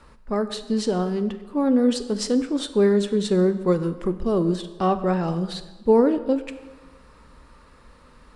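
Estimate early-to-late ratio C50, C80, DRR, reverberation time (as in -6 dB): 13.0 dB, 14.0 dB, 10.5 dB, 1.3 s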